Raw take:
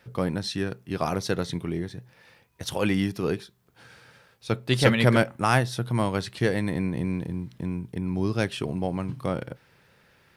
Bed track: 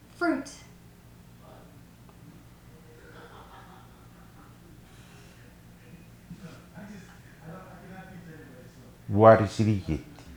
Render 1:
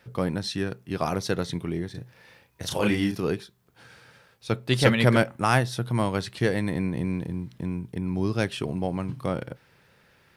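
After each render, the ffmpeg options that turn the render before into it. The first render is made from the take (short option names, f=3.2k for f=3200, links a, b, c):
-filter_complex "[0:a]asettb=1/sr,asplit=3[a][b][c];[a]atrim=end=1.914[d];[b]atrim=start=1.91:end=3.2,asetpts=PTS-STARTPTS,afade=t=in:d=0.004:c=qsin,afade=t=out:st=1.286:d=0.004:c=qsin,asplit=2[e][f];[f]adelay=34,volume=-3dB[g];[e][g]amix=inputs=2:normalize=0,atrim=end_sample=56889[h];[c]atrim=start=3.196[i];[d][h]acrossfade=d=0.004:c1=hsin:c2=qsin[j];[j][i]acrossfade=d=0.004:c1=qsin:c2=hsin"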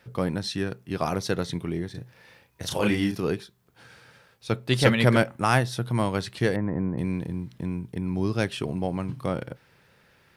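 -filter_complex "[0:a]asettb=1/sr,asplit=3[a][b][c];[a]atrim=end=6.564[d];[b]atrim=start=6.56:end=6.98,asetpts=PTS-STARTPTS,afade=t=in:d=0.004:c=qsin,afade=t=out:st=0.416:d=0.004:c=qsin,lowpass=f=1.5k:w=0.5412,lowpass=f=1.5k:w=1.3066[e];[c]atrim=start=6.976[f];[d][e]acrossfade=d=0.004:c1=hsin:c2=qsin[g];[g][f]acrossfade=d=0.004:c1=qsin:c2=hsin"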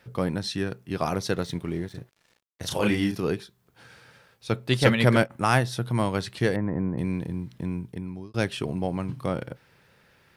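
-filter_complex "[0:a]asettb=1/sr,asplit=3[a][b][c];[a]atrim=end=1.334[d];[b]atrim=start=1.33:end=2.62,asetpts=PTS-STARTPTS,afade=t=in:d=0.004:c=qsin,afade=t=out:st=1.286:d=0.004:c=qsin,aeval=exprs='sgn(val(0))*max(abs(val(0))-0.00316,0)':c=same[e];[c]atrim=start=2.616[f];[d][e]acrossfade=d=0.004:c1=hsin:c2=qsin[g];[g][f]acrossfade=d=0.004:c1=qsin:c2=hsin,asplit=3[h][i][j];[h]afade=t=out:st=4.72:d=0.02[k];[i]agate=range=-33dB:threshold=-24dB:ratio=3:release=100:detection=peak,afade=t=in:st=4.72:d=0.02,afade=t=out:st=5.29:d=0.02[l];[j]afade=t=in:st=5.29:d=0.02[m];[k][l][m]amix=inputs=3:normalize=0,asplit=2[n][o];[n]atrim=end=8.34,asetpts=PTS-STARTPTS,afade=t=out:st=7.8:d=0.54[p];[o]atrim=start=8.34,asetpts=PTS-STARTPTS,afade=t=in:d=0.004:c=hsin[q];[p][q]concat=n=2:v=0:a=1"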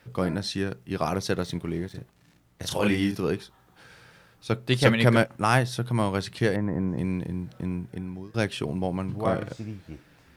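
-filter_complex "[1:a]volume=-12dB[a];[0:a][a]amix=inputs=2:normalize=0"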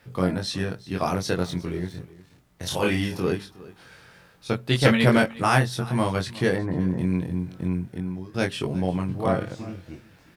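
-filter_complex "[0:a]asplit=2[a][b];[b]adelay=22,volume=-3dB[c];[a][c]amix=inputs=2:normalize=0,aecho=1:1:362:0.106"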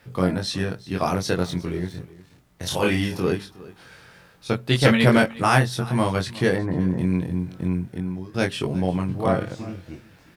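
-af "volume=2dB,alimiter=limit=-3dB:level=0:latency=1"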